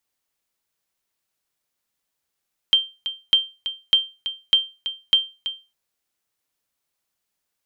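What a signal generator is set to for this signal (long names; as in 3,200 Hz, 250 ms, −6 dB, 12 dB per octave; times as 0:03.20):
ping with an echo 3,150 Hz, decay 0.28 s, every 0.60 s, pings 5, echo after 0.33 s, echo −11.5 dB −7.5 dBFS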